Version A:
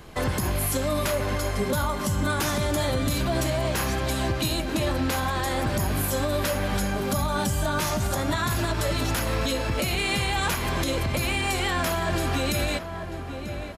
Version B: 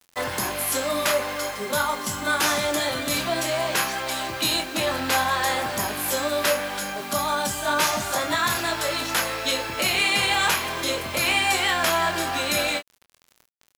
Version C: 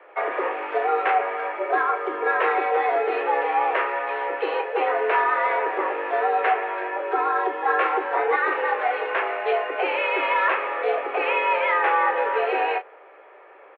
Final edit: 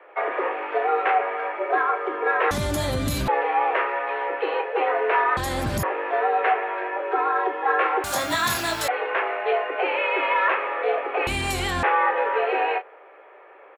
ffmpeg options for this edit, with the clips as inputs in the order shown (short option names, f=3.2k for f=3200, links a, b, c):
-filter_complex "[0:a]asplit=3[a][b][c];[2:a]asplit=5[d][e][f][g][h];[d]atrim=end=2.512[i];[a]atrim=start=2.508:end=3.282[j];[e]atrim=start=3.278:end=5.372[k];[b]atrim=start=5.368:end=5.832[l];[f]atrim=start=5.828:end=8.042[m];[1:a]atrim=start=8.038:end=8.882[n];[g]atrim=start=8.878:end=11.272[o];[c]atrim=start=11.268:end=11.832[p];[h]atrim=start=11.828[q];[i][j]acrossfade=d=0.004:c1=hsin:c2=hsin[r];[r][k]acrossfade=d=0.004:c1=hsin:c2=hsin[s];[s][l]acrossfade=d=0.004:c1=hsin:c2=hsin[t];[t][m]acrossfade=d=0.004:c1=hsin:c2=hsin[u];[u][n]acrossfade=d=0.004:c1=hsin:c2=hsin[v];[v][o]acrossfade=d=0.004:c1=hsin:c2=hsin[w];[w][p]acrossfade=d=0.004:c1=hsin:c2=hsin[x];[x][q]acrossfade=d=0.004:c1=hsin:c2=hsin"